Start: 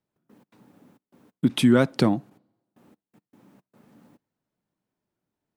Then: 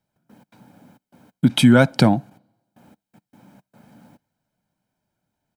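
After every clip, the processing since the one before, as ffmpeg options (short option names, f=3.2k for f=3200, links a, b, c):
-af "aecho=1:1:1.3:0.54,volume=5.5dB"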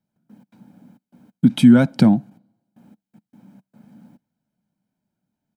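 -af "equalizer=f=210:t=o:w=1.1:g=12,volume=-7dB"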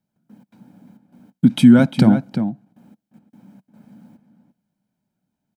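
-filter_complex "[0:a]asplit=2[a][b];[b]adelay=349.9,volume=-9dB,highshelf=f=4k:g=-7.87[c];[a][c]amix=inputs=2:normalize=0,volume=1dB"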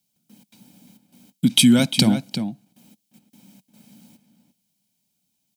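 -af "aexciter=amount=6.4:drive=6.3:freq=2.3k,volume=-5dB"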